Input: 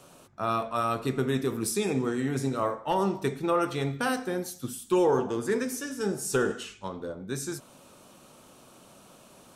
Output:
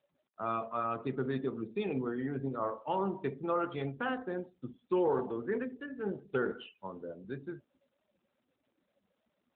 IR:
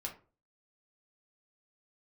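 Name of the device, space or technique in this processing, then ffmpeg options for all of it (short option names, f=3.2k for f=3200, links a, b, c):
mobile call with aggressive noise cancelling: -filter_complex "[0:a]asplit=3[a][b][c];[a]afade=t=out:st=5.4:d=0.02[d];[b]equalizer=f=7.5k:w=1.4:g=-5.5,afade=t=in:st=5.4:d=0.02,afade=t=out:st=6.14:d=0.02[e];[c]afade=t=in:st=6.14:d=0.02[f];[d][e][f]amix=inputs=3:normalize=0,highpass=f=120:p=1,afftdn=nr=33:nf=-41,volume=-5.5dB" -ar 8000 -c:a libopencore_amrnb -b:a 12200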